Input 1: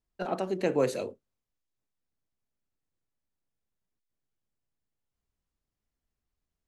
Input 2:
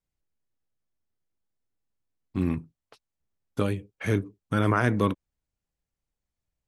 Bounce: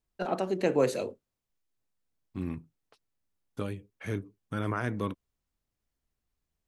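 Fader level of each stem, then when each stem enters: +1.0 dB, -8.5 dB; 0.00 s, 0.00 s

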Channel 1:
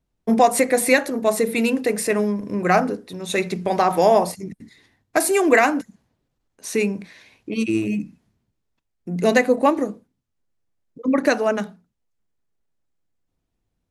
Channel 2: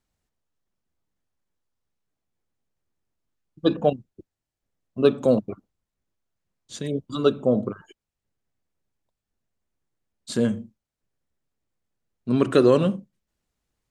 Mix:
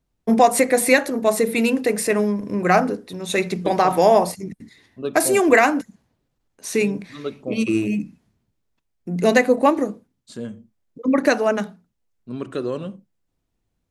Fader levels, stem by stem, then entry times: +1.0 dB, -9.5 dB; 0.00 s, 0.00 s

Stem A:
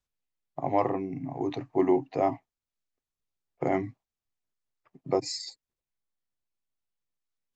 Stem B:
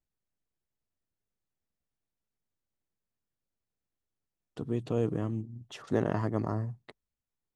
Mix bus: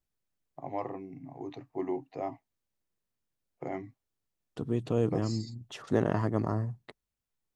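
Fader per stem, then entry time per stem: -10.0 dB, +1.5 dB; 0.00 s, 0.00 s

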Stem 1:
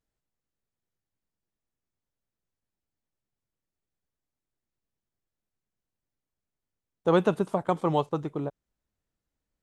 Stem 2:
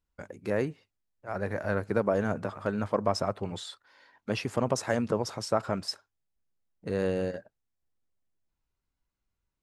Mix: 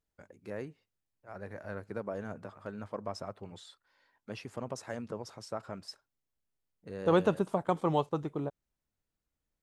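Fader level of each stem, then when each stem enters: -3.5 dB, -11.5 dB; 0.00 s, 0.00 s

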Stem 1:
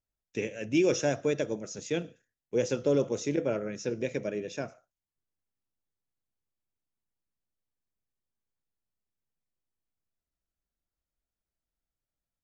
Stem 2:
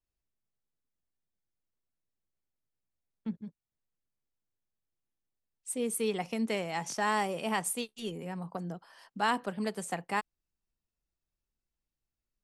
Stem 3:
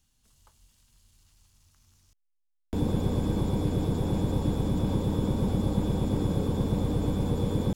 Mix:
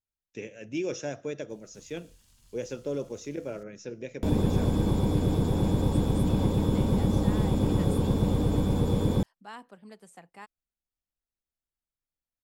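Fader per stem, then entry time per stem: -6.5 dB, -15.0 dB, +2.0 dB; 0.00 s, 0.25 s, 1.50 s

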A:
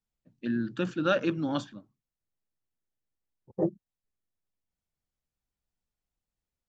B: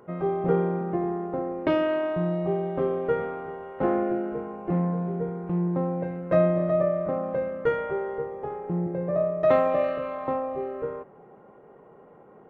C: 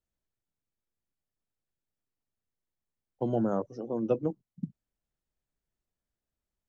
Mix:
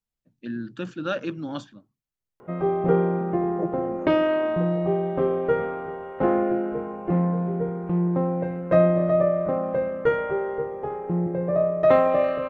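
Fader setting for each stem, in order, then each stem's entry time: -2.0 dB, +3.0 dB, -12.5 dB; 0.00 s, 2.40 s, 0.50 s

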